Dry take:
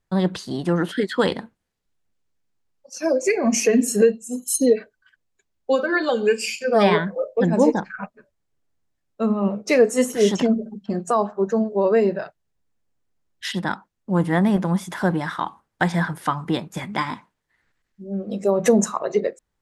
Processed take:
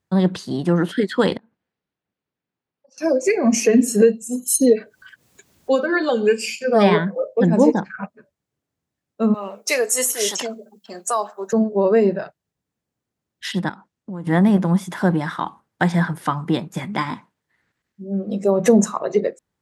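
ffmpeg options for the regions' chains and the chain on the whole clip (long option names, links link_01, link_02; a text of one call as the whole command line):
ffmpeg -i in.wav -filter_complex "[0:a]asettb=1/sr,asplit=3[link_01][link_02][link_03];[link_01]atrim=end=1.374[link_04];[link_02]atrim=start=1.37:end=2.98,asetpts=PTS-STARTPTS,afade=type=in:duration=0.004:curve=qsin,afade=type=out:start_time=1.606:duration=0.004:curve=qsin,lowpass=3300,lowshelf=frequency=150:gain=-8,acompressor=threshold=-52dB:ratio=12:attack=3.2:release=140:knee=1:detection=peak[link_05];[link_03]atrim=start=2.976[link_06];[link_04][link_05]acrossfade=duration=0.004:curve1=hsin:curve2=qsin[link_07];[link_07][link_06]acrossfade=duration=0.004:curve1=qsin:curve2=hsin,asettb=1/sr,asplit=3[link_08][link_09][link_10];[link_08]atrim=end=4.074[link_11];[link_09]atrim=start=4.07:end=5.8,asetpts=PTS-STARTPTS,afade=type=in:duration=0.004:curve=qsin,afade=type=out:start_time=1.726:duration=0.004:curve=qsin,highshelf=frequency=7300:gain=6.5,acompressor=mode=upward:threshold=-30dB:ratio=2.5:attack=3.2:release=140:knee=2.83:detection=peak[link_12];[link_10]atrim=start=5.796[link_13];[link_11][link_12]acrossfade=duration=0.004:curve1=hsin:curve2=qsin[link_14];[link_14][link_13]acrossfade=duration=0.004:curve1=qsin:curve2=hsin,asettb=1/sr,asplit=3[link_15][link_16][link_17];[link_15]atrim=end=9.344[link_18];[link_16]atrim=start=9.34:end=11.53,asetpts=PTS-STARTPTS,afade=type=in:duration=0.004:curve=qsin,afade=type=out:start_time=2.186:duration=0.004:curve=qsin,highpass=670,aemphasis=mode=production:type=75fm[link_19];[link_17]atrim=start=11.526[link_20];[link_18][link_19]acrossfade=duration=0.004:curve1=hsin:curve2=qsin[link_21];[link_21][link_20]acrossfade=duration=0.004:curve1=qsin:curve2=hsin,asettb=1/sr,asplit=3[link_22][link_23][link_24];[link_22]atrim=end=13.694[link_25];[link_23]atrim=start=13.69:end=14.27,asetpts=PTS-STARTPTS,afade=type=in:duration=0.004:curve=qsin,afade=type=out:start_time=0.576:duration=0.004:curve=qsin,lowpass=9800,acompressor=threshold=-32dB:ratio=6:attack=3.2:release=140:knee=1:detection=peak[link_26];[link_24]atrim=start=14.266[link_27];[link_25][link_26]acrossfade=duration=0.004:curve1=hsin:curve2=qsin[link_28];[link_28][link_27]acrossfade=duration=0.004:curve1=qsin:curve2=hsin,highpass=110,lowshelf=frequency=310:gain=6" out.wav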